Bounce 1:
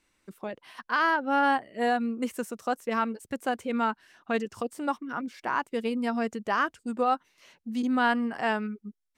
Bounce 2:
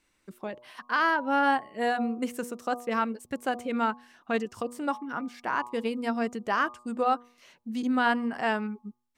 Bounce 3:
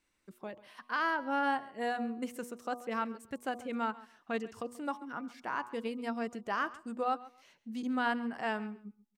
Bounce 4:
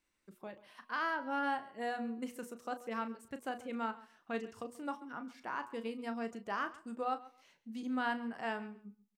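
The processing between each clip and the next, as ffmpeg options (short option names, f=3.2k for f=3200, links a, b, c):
-af "bandreject=f=121.2:t=h:w=4,bandreject=f=242.4:t=h:w=4,bandreject=f=363.6:t=h:w=4,bandreject=f=484.8:t=h:w=4,bandreject=f=606:t=h:w=4,bandreject=f=727.2:t=h:w=4,bandreject=f=848.4:t=h:w=4,bandreject=f=969.6:t=h:w=4,bandreject=f=1.0908k:t=h:w=4,bandreject=f=1.212k:t=h:w=4"
-af "aecho=1:1:135|270:0.112|0.0213,volume=-7dB"
-filter_complex "[0:a]asplit=2[a][b];[b]adelay=35,volume=-11dB[c];[a][c]amix=inputs=2:normalize=0,volume=-4dB"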